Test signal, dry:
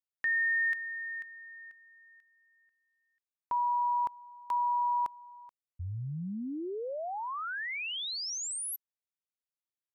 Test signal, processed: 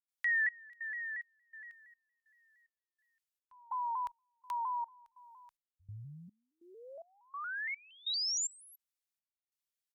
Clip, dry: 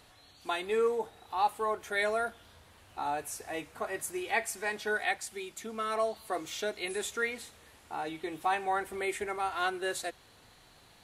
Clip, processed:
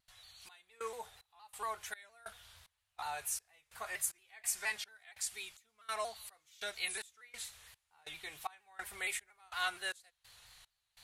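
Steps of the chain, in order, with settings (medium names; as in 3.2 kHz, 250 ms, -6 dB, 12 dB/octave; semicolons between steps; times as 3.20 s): amplifier tone stack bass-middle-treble 10-0-10; trance gate ".xxxxx..." 186 bpm -24 dB; vibrato with a chosen wave saw down 4.3 Hz, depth 100 cents; trim +3.5 dB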